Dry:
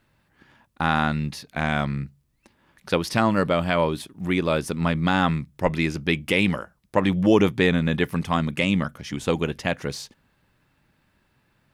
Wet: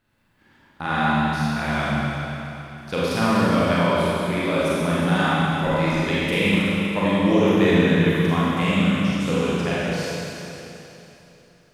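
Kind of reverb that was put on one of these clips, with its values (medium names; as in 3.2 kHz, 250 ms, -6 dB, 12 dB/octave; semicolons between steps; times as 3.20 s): Schroeder reverb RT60 3.2 s, combs from 31 ms, DRR -9 dB; trim -7 dB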